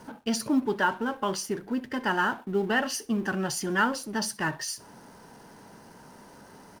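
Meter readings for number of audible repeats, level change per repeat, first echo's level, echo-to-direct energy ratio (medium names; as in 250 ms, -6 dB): 2, -10.0 dB, -22.0 dB, -21.5 dB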